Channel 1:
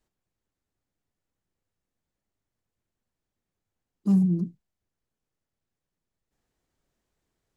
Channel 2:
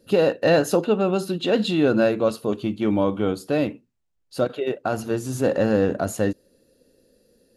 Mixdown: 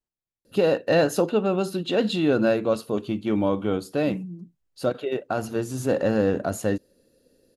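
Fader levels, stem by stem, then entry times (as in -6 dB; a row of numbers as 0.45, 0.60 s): -13.0, -2.0 dB; 0.00, 0.45 s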